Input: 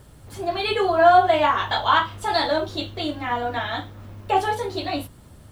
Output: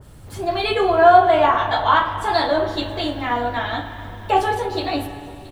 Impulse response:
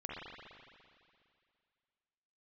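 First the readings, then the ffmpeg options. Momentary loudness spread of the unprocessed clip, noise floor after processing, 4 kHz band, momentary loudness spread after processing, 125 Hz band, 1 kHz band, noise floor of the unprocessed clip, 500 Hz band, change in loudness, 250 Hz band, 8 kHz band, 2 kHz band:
15 LU, −39 dBFS, +0.5 dB, 16 LU, +3.5 dB, +3.0 dB, −48 dBFS, +3.5 dB, +3.0 dB, +3.5 dB, can't be measured, +2.0 dB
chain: -filter_complex "[0:a]aecho=1:1:676:0.075,asplit=2[link_01][link_02];[1:a]atrim=start_sample=2205,lowshelf=frequency=120:gain=10[link_03];[link_02][link_03]afir=irnorm=-1:irlink=0,volume=-7dB[link_04];[link_01][link_04]amix=inputs=2:normalize=0,adynamicequalizer=threshold=0.0316:dfrequency=2000:dqfactor=0.7:tfrequency=2000:tqfactor=0.7:attack=5:release=100:ratio=0.375:range=3:mode=cutabove:tftype=highshelf,volume=1dB"

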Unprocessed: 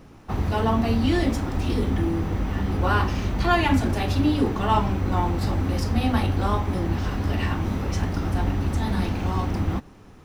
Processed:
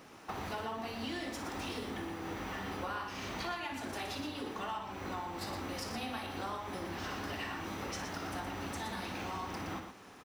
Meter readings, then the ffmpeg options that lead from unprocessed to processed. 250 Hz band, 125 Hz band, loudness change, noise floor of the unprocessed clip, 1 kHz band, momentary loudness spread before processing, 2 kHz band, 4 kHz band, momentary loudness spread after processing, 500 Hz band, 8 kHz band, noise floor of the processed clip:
−17.5 dB, −24.0 dB, −15.5 dB, −47 dBFS, −12.5 dB, 5 LU, −10.0 dB, −8.0 dB, 2 LU, −14.0 dB, −5.5 dB, −54 dBFS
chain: -af "highpass=frequency=820:poles=1,acompressor=threshold=-39dB:ratio=10,aecho=1:1:58|119:0.335|0.422,volume=1.5dB"

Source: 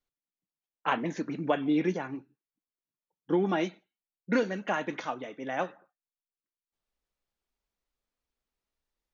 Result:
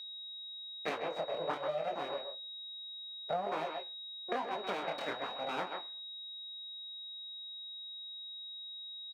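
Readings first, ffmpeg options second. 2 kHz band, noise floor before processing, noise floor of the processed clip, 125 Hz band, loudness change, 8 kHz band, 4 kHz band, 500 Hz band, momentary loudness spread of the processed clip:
−7.0 dB, below −85 dBFS, −46 dBFS, −16.0 dB, −8.5 dB, can't be measured, +9.5 dB, −5.0 dB, 7 LU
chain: -filter_complex "[0:a]adynamicsmooth=sensitivity=6:basefreq=4200,aeval=exprs='abs(val(0))':channel_layout=same,flanger=delay=18.5:depth=7:speed=1.1,equalizer=frequency=660:width=0.94:gain=7,asplit=2[link_01][link_02];[link_02]adelay=130,highpass=300,lowpass=3400,asoftclip=type=hard:threshold=-22dB,volume=-8dB[link_03];[link_01][link_03]amix=inputs=2:normalize=0,aeval=exprs='val(0)+0.00631*sin(2*PI*3800*n/s)':channel_layout=same,acompressor=threshold=-33dB:ratio=6,highpass=300,highshelf=frequency=4100:gain=-8,volume=4.5dB"

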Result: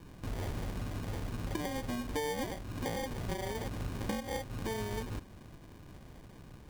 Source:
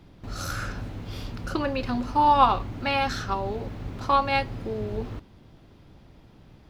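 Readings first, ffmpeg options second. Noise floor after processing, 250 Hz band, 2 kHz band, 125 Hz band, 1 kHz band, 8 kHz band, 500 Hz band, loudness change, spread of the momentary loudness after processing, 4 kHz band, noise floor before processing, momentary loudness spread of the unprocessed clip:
−53 dBFS, −7.0 dB, −11.0 dB, −5.0 dB, −19.5 dB, can't be measured, −8.0 dB, −12.0 dB, 17 LU, −10.0 dB, −53 dBFS, 16 LU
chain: -af "acrusher=samples=33:mix=1:aa=0.000001,acompressor=threshold=-33dB:ratio=10"

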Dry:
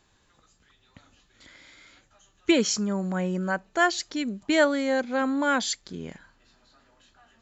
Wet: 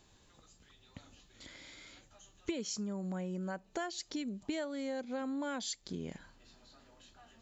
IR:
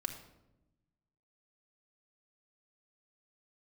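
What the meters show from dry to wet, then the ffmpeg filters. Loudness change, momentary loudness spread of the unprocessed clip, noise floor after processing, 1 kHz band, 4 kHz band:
−14.0 dB, 10 LU, −66 dBFS, −16.5 dB, −12.5 dB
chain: -af "equalizer=frequency=1500:width_type=o:width=1.3:gain=-6.5,acompressor=threshold=-38dB:ratio=6,volume=1.5dB"

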